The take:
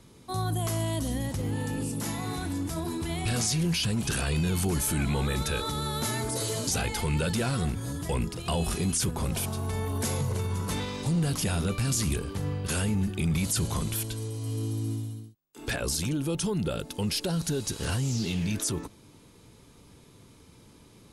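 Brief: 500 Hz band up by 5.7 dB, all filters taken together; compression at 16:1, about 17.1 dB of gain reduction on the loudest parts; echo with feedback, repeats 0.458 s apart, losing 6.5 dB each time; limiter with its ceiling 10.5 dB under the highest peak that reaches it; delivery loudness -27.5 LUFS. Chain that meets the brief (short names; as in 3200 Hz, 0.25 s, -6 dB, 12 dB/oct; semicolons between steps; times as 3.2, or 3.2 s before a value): bell 500 Hz +7 dB; compressor 16:1, threshold -39 dBFS; limiter -37 dBFS; feedback echo 0.458 s, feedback 47%, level -6.5 dB; gain +17 dB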